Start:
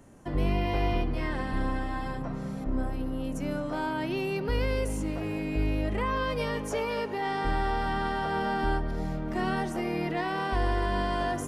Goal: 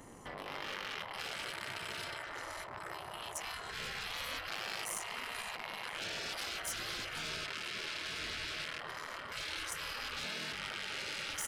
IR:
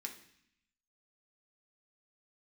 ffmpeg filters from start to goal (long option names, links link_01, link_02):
-filter_complex "[0:a]aecho=1:1:1:0.84,asplit=6[link_01][link_02][link_03][link_04][link_05][link_06];[link_02]adelay=490,afreqshift=-38,volume=-15.5dB[link_07];[link_03]adelay=980,afreqshift=-76,volume=-20.7dB[link_08];[link_04]adelay=1470,afreqshift=-114,volume=-25.9dB[link_09];[link_05]adelay=1960,afreqshift=-152,volume=-31.1dB[link_10];[link_06]adelay=2450,afreqshift=-190,volume=-36.3dB[link_11];[link_01][link_07][link_08][link_09][link_10][link_11]amix=inputs=6:normalize=0,tremolo=f=240:d=0.947,aeval=exprs='(tanh(39.8*val(0)+0.2)-tanh(0.2))/39.8':channel_layout=same,asettb=1/sr,asplit=3[link_12][link_13][link_14];[link_12]atrim=end=10.244[link_15];[link_13]atrim=start=10.24:end=10.68,asetpts=PTS-STARTPTS,afade=type=in:duration=0.004:curve=qsin,afade=type=out:start_time=0.436:duration=0.004:curve=qsin,highpass=190[link_16];[link_14]atrim=start=10.676[link_17];[link_15][link_16]acrossfade=duration=0.004:curve1=hsin:curve2=qsin[link_18];[link_18][link_17]acrossfade=duration=0.004:curve1=qsin:curve2=hsin,alimiter=level_in=12dB:limit=-24dB:level=0:latency=1:release=14,volume=-12dB,lowshelf=frequency=270:gain=-12,dynaudnorm=framelen=170:gausssize=9:maxgain=7dB,asettb=1/sr,asplit=3[link_19][link_20][link_21];[link_19]atrim=end=1.194[link_22];[link_20]atrim=start=1.19:end=2.04,asetpts=PTS-STARTPTS,afade=type=in:duration=0.004:curve=qsin,afade=type=out:start_time=0.846:duration=0.004:curve=qsin,highshelf=frequency=9000:gain=10.5[link_23];[link_21]atrim=start=2.036[link_24];[link_22][link_23]acrossfade=duration=0.004:curve1=hsin:curve2=qsin[link_25];[link_25][link_24]acrossfade=duration=0.004:curve1=qsin:curve2=hsin,afftfilt=real='re*lt(hypot(re,im),0.0158)':imag='im*lt(hypot(re,im),0.0158)':win_size=1024:overlap=0.75,volume=7.5dB"